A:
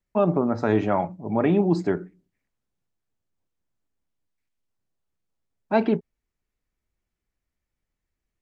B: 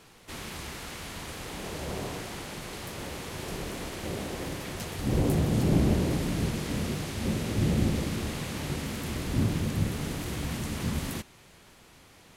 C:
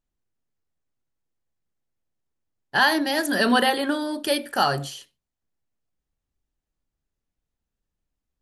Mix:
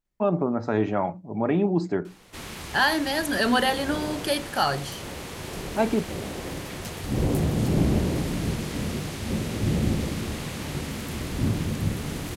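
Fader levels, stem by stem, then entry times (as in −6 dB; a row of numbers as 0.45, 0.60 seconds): −2.5, +1.5, −2.5 decibels; 0.05, 2.05, 0.00 seconds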